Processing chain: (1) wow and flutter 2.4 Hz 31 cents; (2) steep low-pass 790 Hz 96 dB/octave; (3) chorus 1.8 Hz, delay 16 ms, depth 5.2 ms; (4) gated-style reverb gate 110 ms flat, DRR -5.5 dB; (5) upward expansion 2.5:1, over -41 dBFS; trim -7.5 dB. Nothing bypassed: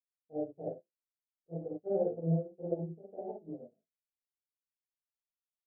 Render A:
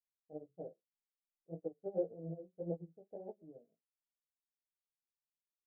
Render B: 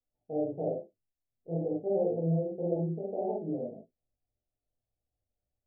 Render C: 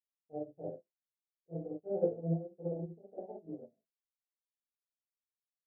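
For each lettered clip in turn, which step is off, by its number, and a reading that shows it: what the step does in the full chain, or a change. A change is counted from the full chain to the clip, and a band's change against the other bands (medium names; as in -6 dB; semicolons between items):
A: 4, crest factor change +3.5 dB; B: 5, momentary loudness spread change -6 LU; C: 1, crest factor change +4.5 dB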